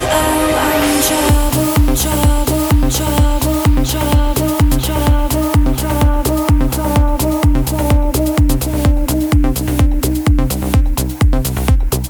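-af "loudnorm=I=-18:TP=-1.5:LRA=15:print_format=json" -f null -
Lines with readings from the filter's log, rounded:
"input_i" : "-14.4",
"input_tp" : "-1.1",
"input_lra" : "1.6",
"input_thresh" : "-24.4",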